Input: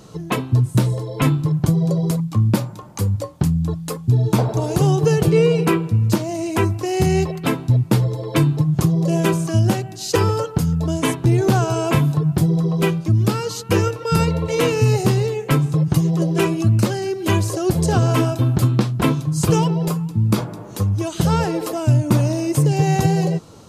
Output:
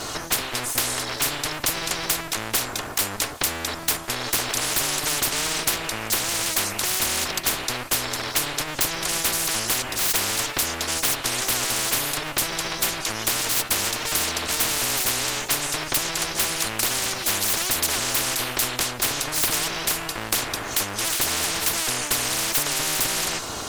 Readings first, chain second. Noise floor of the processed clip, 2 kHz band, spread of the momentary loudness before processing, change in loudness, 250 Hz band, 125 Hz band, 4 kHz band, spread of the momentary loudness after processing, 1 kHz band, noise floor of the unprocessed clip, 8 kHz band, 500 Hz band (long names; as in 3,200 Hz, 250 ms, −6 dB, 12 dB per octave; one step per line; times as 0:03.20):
−33 dBFS, +4.5 dB, 5 LU, −4.0 dB, −16.5 dB, −23.0 dB, +8.5 dB, 3 LU, −3.5 dB, −35 dBFS, +10.0 dB, −12.0 dB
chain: lower of the sound and its delayed copy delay 2.8 ms
every bin compressed towards the loudest bin 10 to 1
level +2 dB